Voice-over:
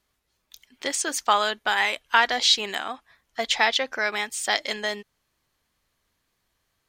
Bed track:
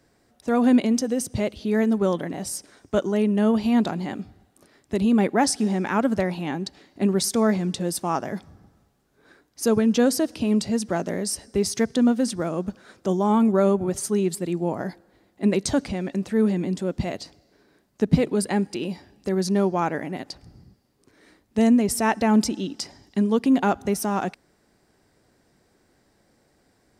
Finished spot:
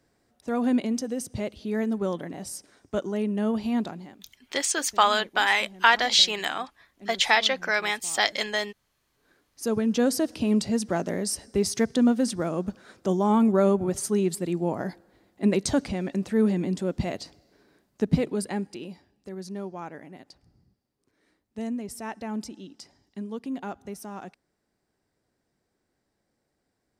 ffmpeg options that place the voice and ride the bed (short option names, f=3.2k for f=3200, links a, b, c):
-filter_complex "[0:a]adelay=3700,volume=0.5dB[a];[1:a]volume=15.5dB,afade=t=out:st=3.75:d=0.44:silence=0.141254,afade=t=in:st=8.9:d=1.47:silence=0.0841395,afade=t=out:st=17.68:d=1.45:silence=0.237137[b];[a][b]amix=inputs=2:normalize=0"